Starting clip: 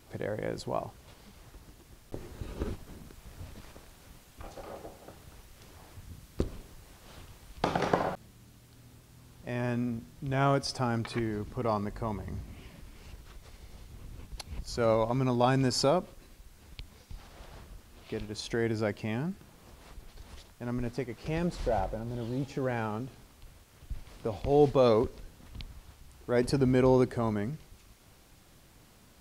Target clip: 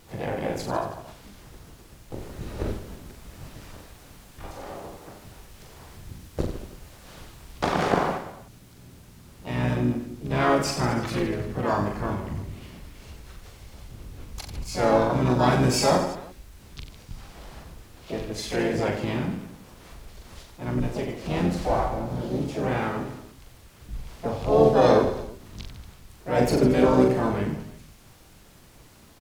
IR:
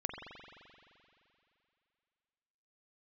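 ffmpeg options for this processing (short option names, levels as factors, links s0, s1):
-filter_complex "[0:a]acontrast=27,aecho=1:1:40|90|152.5|230.6|328.3:0.631|0.398|0.251|0.158|0.1,asplit=4[s0][s1][s2][s3];[s1]asetrate=22050,aresample=44100,atempo=2,volume=0.282[s4];[s2]asetrate=52444,aresample=44100,atempo=0.840896,volume=0.447[s5];[s3]asetrate=66075,aresample=44100,atempo=0.66742,volume=0.501[s6];[s0][s4][s5][s6]amix=inputs=4:normalize=0,volume=0.708"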